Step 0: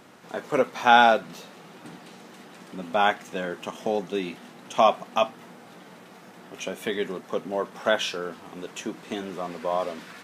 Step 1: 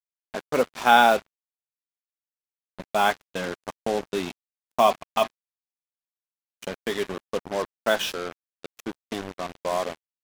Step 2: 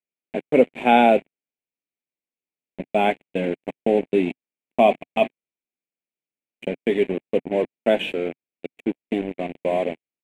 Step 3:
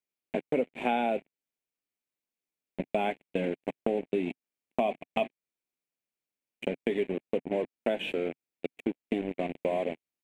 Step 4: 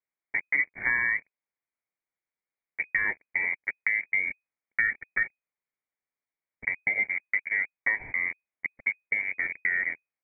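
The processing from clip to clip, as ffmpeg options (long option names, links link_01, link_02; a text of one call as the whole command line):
ffmpeg -i in.wav -af "agate=range=-8dB:threshold=-34dB:ratio=16:detection=peak,acrusher=bits=4:mix=0:aa=0.5" out.wav
ffmpeg -i in.wav -af "firequalizer=gain_entry='entry(100,0);entry(150,8);entry(260,13);entry(720,5);entry(1200,-13);entry(2300,10);entry(5200,-25);entry(7900,-9);entry(15000,-20)':delay=0.05:min_phase=1,volume=-2dB" out.wav
ffmpeg -i in.wav -af "acompressor=threshold=-27dB:ratio=4" out.wav
ffmpeg -i in.wav -af "lowpass=frequency=2100:width_type=q:width=0.5098,lowpass=frequency=2100:width_type=q:width=0.6013,lowpass=frequency=2100:width_type=q:width=0.9,lowpass=frequency=2100:width_type=q:width=2.563,afreqshift=-2500,volume=2dB" out.wav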